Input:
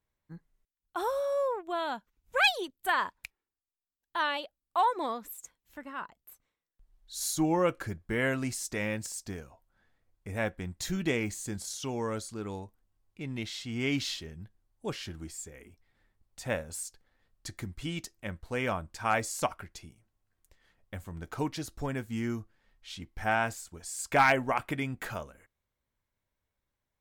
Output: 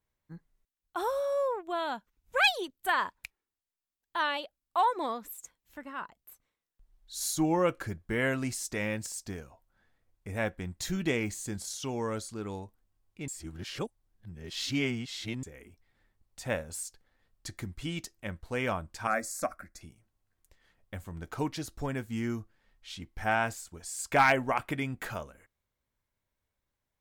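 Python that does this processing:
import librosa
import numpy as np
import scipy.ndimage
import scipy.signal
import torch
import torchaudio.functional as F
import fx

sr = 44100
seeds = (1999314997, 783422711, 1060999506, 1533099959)

y = fx.fixed_phaser(x, sr, hz=610.0, stages=8, at=(19.07, 19.81))
y = fx.edit(y, sr, fx.reverse_span(start_s=13.28, length_s=2.15), tone=tone)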